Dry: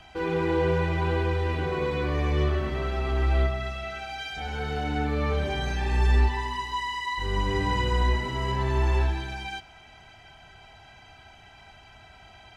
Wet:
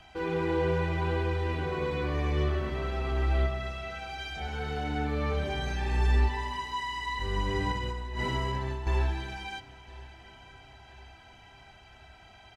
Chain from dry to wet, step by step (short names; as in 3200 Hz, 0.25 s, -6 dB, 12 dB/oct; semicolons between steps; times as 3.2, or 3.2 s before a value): 7.72–8.87 negative-ratio compressor -29 dBFS, ratio -1; feedback echo 1.014 s, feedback 54%, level -21 dB; gain -3.5 dB